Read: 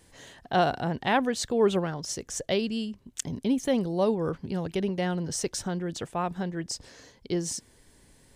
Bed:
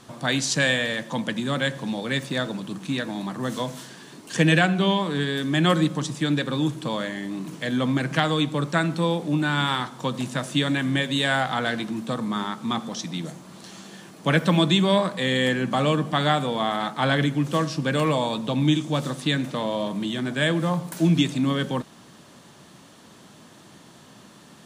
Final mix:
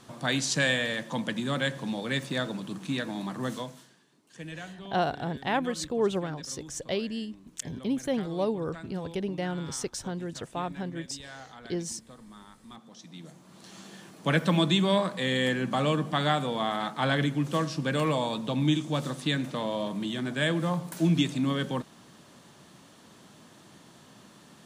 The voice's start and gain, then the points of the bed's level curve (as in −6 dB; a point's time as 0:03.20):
4.40 s, −3.5 dB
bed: 0:03.48 −4 dB
0:04.08 −22.5 dB
0:12.67 −22.5 dB
0:13.81 −4.5 dB